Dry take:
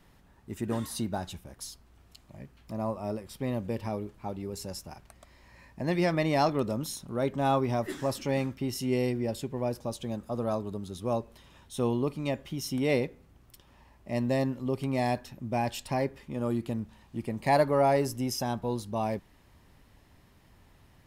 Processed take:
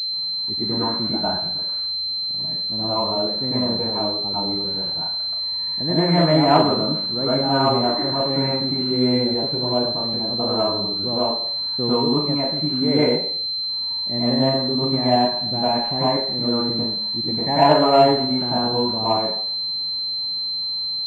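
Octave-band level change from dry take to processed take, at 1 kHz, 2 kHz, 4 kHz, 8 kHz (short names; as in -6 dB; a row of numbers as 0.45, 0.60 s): +10.5 dB, +5.5 dB, +26.0 dB, under -10 dB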